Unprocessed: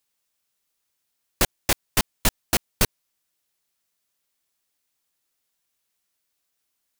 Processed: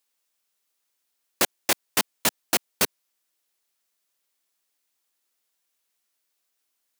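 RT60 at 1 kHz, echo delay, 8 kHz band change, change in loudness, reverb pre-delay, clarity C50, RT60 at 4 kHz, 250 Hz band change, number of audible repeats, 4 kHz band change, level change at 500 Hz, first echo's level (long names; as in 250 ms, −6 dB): no reverb audible, no echo audible, 0.0 dB, −0.5 dB, no reverb audible, no reverb audible, no reverb audible, −3.0 dB, no echo audible, 0.0 dB, −0.5 dB, no echo audible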